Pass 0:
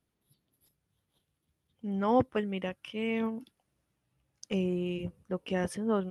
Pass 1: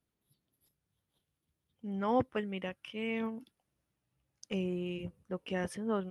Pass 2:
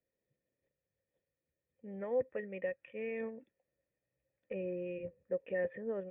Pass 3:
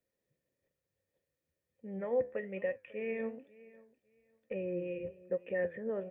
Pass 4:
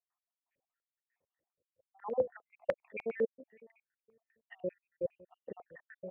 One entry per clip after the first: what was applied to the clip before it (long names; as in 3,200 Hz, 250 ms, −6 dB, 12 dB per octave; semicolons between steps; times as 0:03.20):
dynamic equaliser 2,000 Hz, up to +3 dB, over −48 dBFS, Q 0.79; level −4.5 dB
brickwall limiter −27.5 dBFS, peak gain reduction 9 dB; formant resonators in series e; level +10 dB
repeating echo 548 ms, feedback 21%, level −21 dB; flanger 1.1 Hz, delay 8.5 ms, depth 5.8 ms, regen +77%; level +6.5 dB
time-frequency cells dropped at random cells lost 72%; low-pass on a step sequencer 10 Hz 490–2,300 Hz